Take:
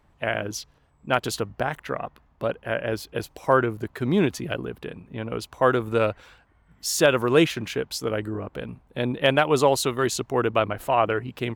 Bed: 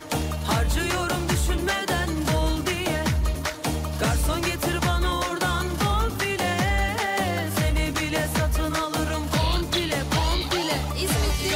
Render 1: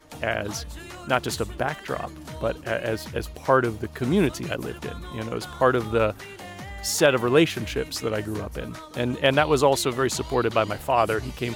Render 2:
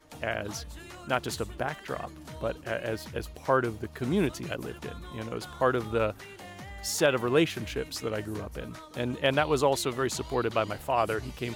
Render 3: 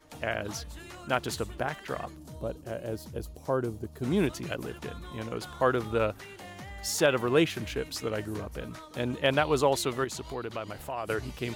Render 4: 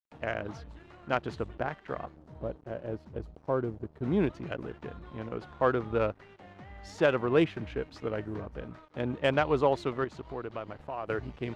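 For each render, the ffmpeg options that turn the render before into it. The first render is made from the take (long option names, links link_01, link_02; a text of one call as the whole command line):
ffmpeg -i in.wav -i bed.wav -filter_complex "[1:a]volume=-15dB[link_01];[0:a][link_01]amix=inputs=2:normalize=0" out.wav
ffmpeg -i in.wav -af "volume=-5.5dB" out.wav
ffmpeg -i in.wav -filter_complex "[0:a]asplit=3[link_01][link_02][link_03];[link_01]afade=type=out:start_time=2.15:duration=0.02[link_04];[link_02]equalizer=frequency=2000:width=0.6:gain=-14,afade=type=in:start_time=2.15:duration=0.02,afade=type=out:start_time=4.03:duration=0.02[link_05];[link_03]afade=type=in:start_time=4.03:duration=0.02[link_06];[link_04][link_05][link_06]amix=inputs=3:normalize=0,asettb=1/sr,asplit=3[link_07][link_08][link_09];[link_07]atrim=end=10.044[link_10];[link_08]atrim=start=10.04:end=11.1,asetpts=PTS-STARTPTS,afade=type=in:duration=0.004:curve=qsin,afade=type=out:start_time=1.056:duration=0.004:curve=qsin,acompressor=threshold=-37dB:ratio=2:attack=3.2:release=140:knee=1:detection=peak[link_11];[link_09]atrim=start=11.096[link_12];[link_10][link_11]acrossfade=duration=0.004:curve1=hsin:curve2=qsin[link_13];[link_13][link_12]acrossfade=duration=0.004:curve1=qsin:curve2=hsin" out.wav
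ffmpeg -i in.wav -af "aeval=exprs='sgn(val(0))*max(abs(val(0))-0.00355,0)':channel_layout=same,adynamicsmooth=sensitivity=0.5:basefreq=2200" out.wav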